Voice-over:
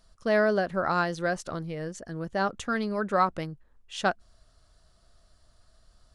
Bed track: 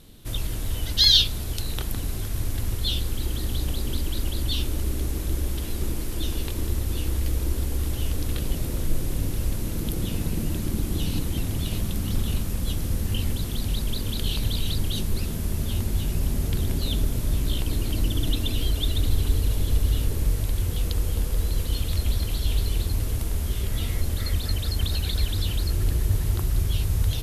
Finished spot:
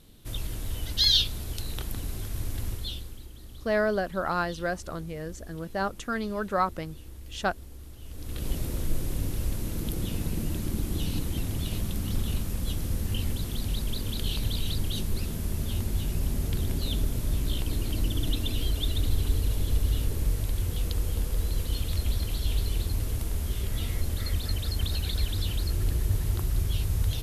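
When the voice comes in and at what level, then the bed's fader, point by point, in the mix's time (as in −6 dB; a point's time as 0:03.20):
3.40 s, −2.0 dB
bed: 0:02.68 −5 dB
0:03.31 −18.5 dB
0:08.01 −18.5 dB
0:08.48 −3.5 dB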